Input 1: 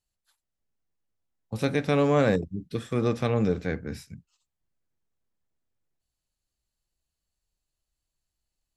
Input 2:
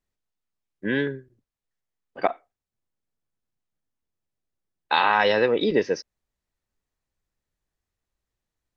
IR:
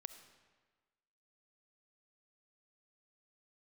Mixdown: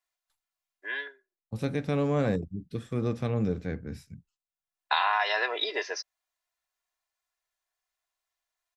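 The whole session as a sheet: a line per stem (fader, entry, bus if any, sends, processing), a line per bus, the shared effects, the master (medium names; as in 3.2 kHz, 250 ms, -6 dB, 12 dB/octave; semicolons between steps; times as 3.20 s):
-8.0 dB, 0.00 s, no send, gate with hold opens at -56 dBFS
0.0 dB, 0.00 s, no send, high-pass 700 Hz 24 dB/octave; comb 2.9 ms, depth 71%; compression, threshold -22 dBFS, peak gain reduction 7 dB; auto duck -19 dB, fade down 0.80 s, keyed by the first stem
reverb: none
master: bass shelf 330 Hz +7 dB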